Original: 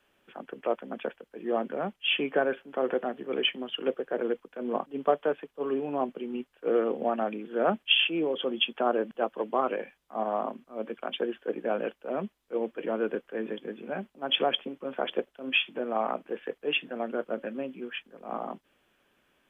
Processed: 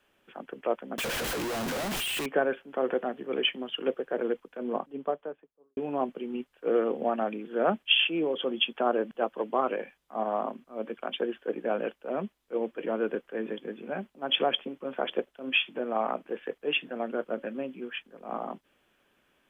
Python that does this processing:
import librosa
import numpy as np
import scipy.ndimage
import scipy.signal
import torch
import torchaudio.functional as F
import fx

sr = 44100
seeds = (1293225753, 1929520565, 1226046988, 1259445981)

y = fx.clip_1bit(x, sr, at=(0.98, 2.26))
y = fx.studio_fade_out(y, sr, start_s=4.49, length_s=1.28)